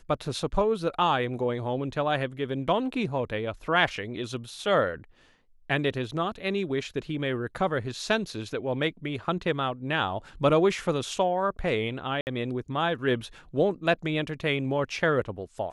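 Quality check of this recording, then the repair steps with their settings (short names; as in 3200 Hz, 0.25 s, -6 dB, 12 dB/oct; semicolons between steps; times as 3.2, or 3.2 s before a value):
12.21–12.27 gap 59 ms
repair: interpolate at 12.21, 59 ms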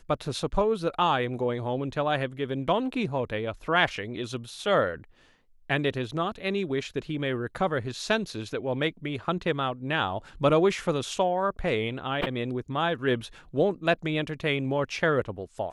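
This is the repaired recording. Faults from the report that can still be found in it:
none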